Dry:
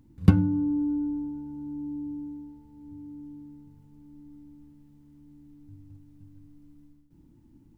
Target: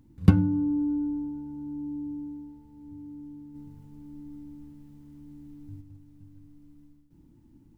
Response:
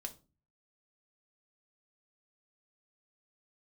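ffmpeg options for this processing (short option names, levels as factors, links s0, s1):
-filter_complex "[0:a]asplit=3[s0][s1][s2];[s0]afade=t=out:st=3.54:d=0.02[s3];[s1]acontrast=38,afade=t=in:st=3.54:d=0.02,afade=t=out:st=5.8:d=0.02[s4];[s2]afade=t=in:st=5.8:d=0.02[s5];[s3][s4][s5]amix=inputs=3:normalize=0"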